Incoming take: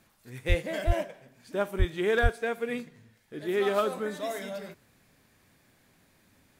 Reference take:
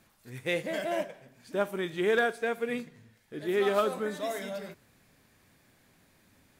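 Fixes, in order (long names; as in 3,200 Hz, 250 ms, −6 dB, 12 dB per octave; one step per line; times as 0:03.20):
high-pass at the plosives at 0:00.48/0:00.86/0:01.78/0:02.22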